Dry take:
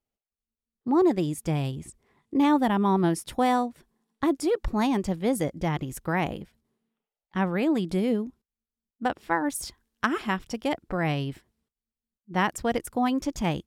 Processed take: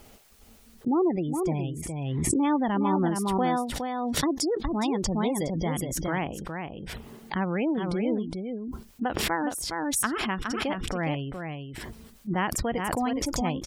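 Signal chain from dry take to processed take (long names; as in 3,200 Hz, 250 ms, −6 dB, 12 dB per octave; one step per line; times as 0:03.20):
gate on every frequency bin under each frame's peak −30 dB strong
0:03.68–0:06.01: flat-topped bell 4,700 Hz +8 dB 1.3 octaves
single-tap delay 414 ms −6 dB
background raised ahead of every attack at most 22 dB per second
level −3.5 dB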